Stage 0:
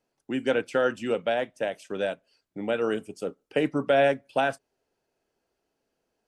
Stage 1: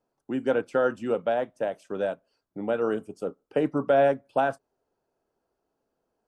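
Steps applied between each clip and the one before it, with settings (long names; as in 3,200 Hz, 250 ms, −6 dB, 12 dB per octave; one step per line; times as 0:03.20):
high shelf with overshoot 1,600 Hz −7.5 dB, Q 1.5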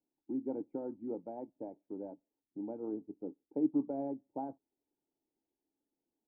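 harmonic and percussive parts rebalanced harmonic −4 dB
formant resonators in series u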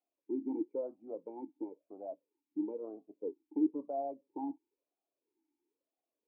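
in parallel at −1.5 dB: brickwall limiter −31 dBFS, peak gain reduction 10 dB
on the sum: formant filter swept between two vowels a-u 1 Hz
level +5.5 dB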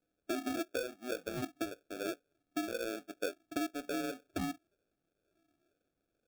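downward compressor 16 to 1, threshold −41 dBFS, peak gain reduction 17 dB
sample-rate reduction 1,000 Hz, jitter 0%
level +8 dB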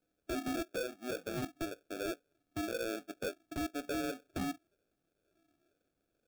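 wave folding −32.5 dBFS
level +1.5 dB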